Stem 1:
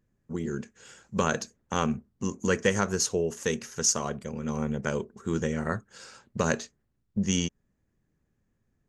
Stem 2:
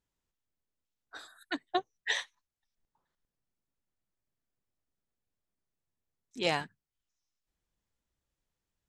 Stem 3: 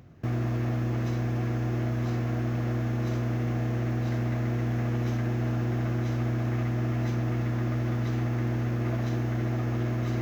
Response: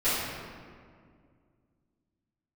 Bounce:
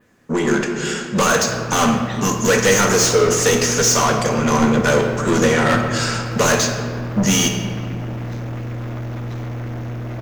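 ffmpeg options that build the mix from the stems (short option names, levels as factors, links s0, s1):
-filter_complex "[0:a]adynamicequalizer=threshold=0.00708:dfrequency=5900:dqfactor=1.4:tfrequency=5900:tqfactor=1.4:attack=5:release=100:ratio=0.375:range=3:mode=boostabove:tftype=bell,asplit=2[s0][s1];[s1]highpass=f=720:p=1,volume=39.8,asoftclip=type=tanh:threshold=0.355[s2];[s0][s2]amix=inputs=2:normalize=0,lowpass=f=5600:p=1,volume=0.501,volume=0.944,asplit=2[s3][s4];[s4]volume=0.188[s5];[1:a]volume=0.668[s6];[2:a]dynaudnorm=f=310:g=9:m=2.51,asoftclip=type=tanh:threshold=0.0596,adelay=1250,volume=1[s7];[3:a]atrim=start_sample=2205[s8];[s5][s8]afir=irnorm=-1:irlink=0[s9];[s3][s6][s7][s9]amix=inputs=4:normalize=0"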